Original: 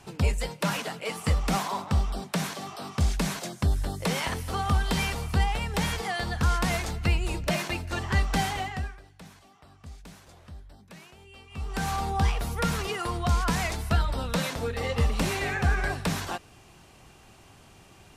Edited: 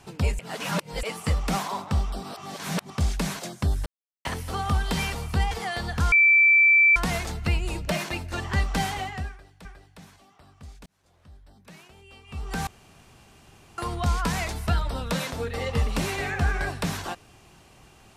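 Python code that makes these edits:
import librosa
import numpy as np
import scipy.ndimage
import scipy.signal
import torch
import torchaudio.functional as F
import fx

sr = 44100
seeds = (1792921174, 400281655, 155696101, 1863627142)

y = fx.edit(x, sr, fx.reverse_span(start_s=0.39, length_s=0.64),
    fx.reverse_span(start_s=2.23, length_s=0.67),
    fx.silence(start_s=3.86, length_s=0.39),
    fx.cut(start_s=5.51, length_s=0.43),
    fx.insert_tone(at_s=6.55, length_s=0.84, hz=2330.0, db=-13.5),
    fx.repeat(start_s=8.88, length_s=0.36, count=2),
    fx.fade_in_span(start_s=10.09, length_s=0.87),
    fx.room_tone_fill(start_s=11.9, length_s=1.11), tone=tone)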